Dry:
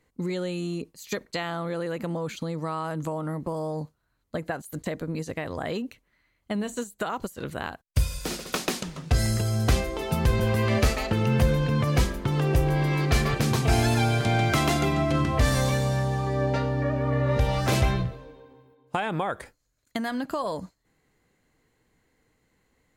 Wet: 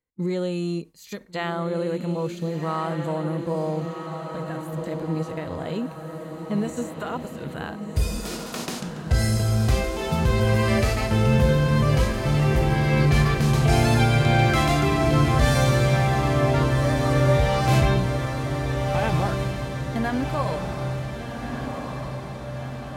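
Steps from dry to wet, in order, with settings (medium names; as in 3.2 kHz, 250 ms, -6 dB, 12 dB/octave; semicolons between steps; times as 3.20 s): gate with hold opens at -48 dBFS; harmonic-percussive split percussive -12 dB; echo that smears into a reverb 1484 ms, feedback 60%, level -6 dB; trim +4 dB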